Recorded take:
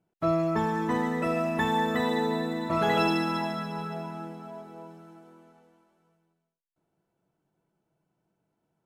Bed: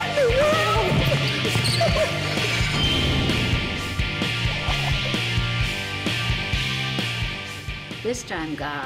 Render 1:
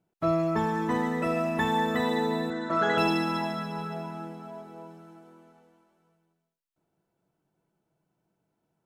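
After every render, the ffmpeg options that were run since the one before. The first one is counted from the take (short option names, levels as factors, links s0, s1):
-filter_complex "[0:a]asettb=1/sr,asplit=3[s0][s1][s2];[s0]atrim=end=2.504[s3];[s1]atrim=start=2.5:end=2.98,asetpts=PTS-STARTPTS,afade=t=in:d=0.004:c=qsin,afade=t=out:st=0.476:d=0.004:c=qsin,highpass=210,equalizer=f=880:t=q:w=4:g=-5,equalizer=f=1500:t=q:w=4:g=10,equalizer=f=2500:t=q:w=4:g=-9,equalizer=f=4800:t=q:w=4:g=-5,lowpass=f=7400:w=0.5412,lowpass=f=7400:w=1.3066[s4];[s2]atrim=start=2.976[s5];[s3][s4]acrossfade=d=0.004:c1=hsin:c2=qsin[s6];[s6][s5]acrossfade=d=0.004:c1=qsin:c2=hsin"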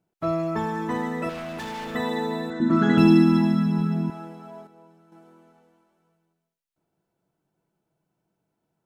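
-filter_complex "[0:a]asettb=1/sr,asplit=3[s0][s1][s2];[s0]atrim=end=1.294[s3];[s1]atrim=start=1.29:end=1.95,asetpts=PTS-STARTPTS,afade=t=in:d=0.004:c=qsin,afade=t=out:st=0.656:d=0.004:c=qsin,volume=39.8,asoftclip=hard,volume=0.0251[s4];[s2]atrim=start=1.946[s5];[s3][s4]acrossfade=d=0.004:c1=hsin:c2=qsin[s6];[s6][s5]acrossfade=d=0.004:c1=qsin:c2=hsin,asettb=1/sr,asplit=3[s7][s8][s9];[s7]atrim=end=2.604[s10];[s8]atrim=start=2.6:end=4.1,asetpts=PTS-STARTPTS,afade=t=in:d=0.004:c=qsin,afade=t=out:st=1.496:d=0.004:c=qsin,lowshelf=f=380:t=q:w=3:g=11[s11];[s9]atrim=start=4.096[s12];[s10][s11]acrossfade=d=0.004:c1=hsin:c2=qsin[s13];[s13][s12]acrossfade=d=0.004:c1=qsin:c2=hsin,asplit=3[s14][s15][s16];[s14]atrim=end=4.672[s17];[s15]atrim=start=4.668:end=5.122,asetpts=PTS-STARTPTS,volume=0.398[s18];[s16]atrim=start=5.118[s19];[s17][s18]acrossfade=d=0.004:c1=hsin:c2=hsin[s20];[s20][s19]acrossfade=d=0.004:c1=hsin:c2=hsin"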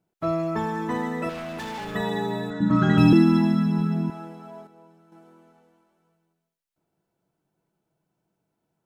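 -filter_complex "[0:a]asettb=1/sr,asplit=3[s0][s1][s2];[s0]atrim=end=1.784[s3];[s1]atrim=start=1.78:end=3.13,asetpts=PTS-STARTPTS,afade=t=in:d=0.004:c=qsin,afade=t=out:st=1.346:d=0.004:c=qsin,afreqshift=-39[s4];[s2]atrim=start=3.126[s5];[s3][s4]acrossfade=d=0.004:c1=hsin:c2=qsin[s6];[s6][s5]acrossfade=d=0.004:c1=qsin:c2=hsin"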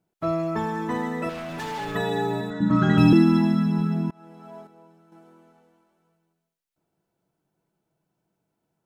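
-filter_complex "[0:a]asettb=1/sr,asplit=3[s0][s1][s2];[s0]atrim=end=1.494[s3];[s1]atrim=start=1.49:end=2.41,asetpts=PTS-STARTPTS,afade=t=in:d=0.004:c=qsin,afade=t=out:st=0.916:d=0.004:c=qsin,aecho=1:1:7:0.67,atrim=end_sample=40572[s4];[s2]atrim=start=2.406[s5];[s3][s4]acrossfade=d=0.004:c1=hsin:c2=qsin[s6];[s6][s5]acrossfade=d=0.004:c1=qsin:c2=hsin,asplit=2[s7][s8];[s7]atrim=end=4.11,asetpts=PTS-STARTPTS,afade=t=out:st=4.106:d=0.004:c=hsin:silence=0.0707946[s9];[s8]atrim=start=4.11,asetpts=PTS-STARTPTS,afade=t=in:d=0.44:silence=0.0707946[s10];[s9][s10]concat=n=2:v=0:a=1"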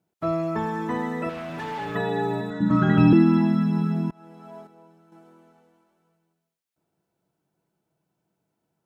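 -filter_complex "[0:a]highpass=43,acrossover=split=3200[s0][s1];[s1]acompressor=threshold=0.00224:ratio=4:attack=1:release=60[s2];[s0][s2]amix=inputs=2:normalize=0"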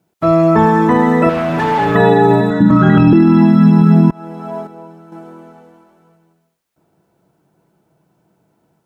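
-filter_complex "[0:a]acrossover=split=1700[s0][s1];[s0]dynaudnorm=f=250:g=3:m=2[s2];[s2][s1]amix=inputs=2:normalize=0,alimiter=level_in=3.76:limit=0.891:release=50:level=0:latency=1"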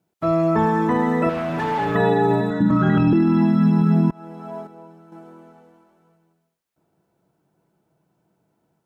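-af "volume=0.398"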